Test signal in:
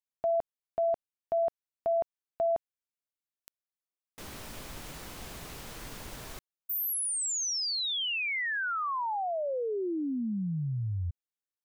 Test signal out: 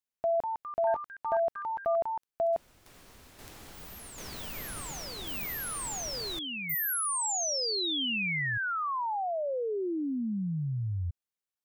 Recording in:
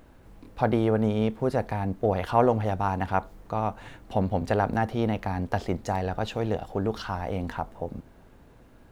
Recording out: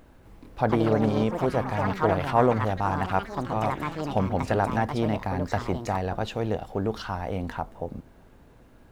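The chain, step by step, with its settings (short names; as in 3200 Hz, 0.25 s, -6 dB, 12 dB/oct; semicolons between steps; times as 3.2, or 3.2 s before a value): echoes that change speed 0.257 s, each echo +5 st, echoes 3, each echo -6 dB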